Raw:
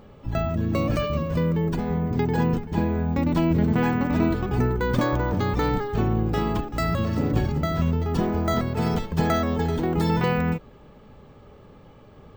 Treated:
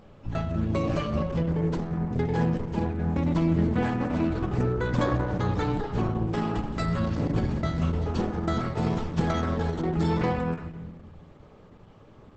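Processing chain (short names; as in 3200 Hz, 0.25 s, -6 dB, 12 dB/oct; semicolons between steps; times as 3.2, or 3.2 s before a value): on a send at -6 dB: reverb RT60 1.1 s, pre-delay 5 ms; on the sum: gain -3.5 dB; Opus 10 kbps 48000 Hz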